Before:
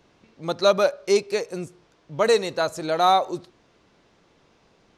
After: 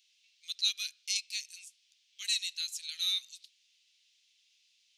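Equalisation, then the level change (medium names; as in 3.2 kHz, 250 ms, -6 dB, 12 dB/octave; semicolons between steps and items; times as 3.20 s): steep high-pass 2.7 kHz 36 dB/octave; 0.0 dB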